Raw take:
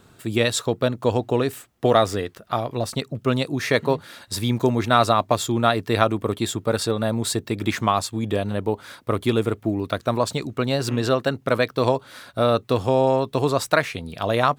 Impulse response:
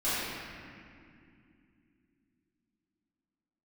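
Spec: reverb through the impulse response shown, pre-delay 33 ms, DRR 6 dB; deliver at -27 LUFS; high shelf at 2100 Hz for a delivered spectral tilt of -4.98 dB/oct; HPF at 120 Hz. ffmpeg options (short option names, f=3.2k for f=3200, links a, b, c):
-filter_complex "[0:a]highpass=120,highshelf=f=2.1k:g=-5,asplit=2[a][b];[1:a]atrim=start_sample=2205,adelay=33[c];[b][c]afir=irnorm=-1:irlink=0,volume=-17dB[d];[a][d]amix=inputs=2:normalize=0,volume=-4.5dB"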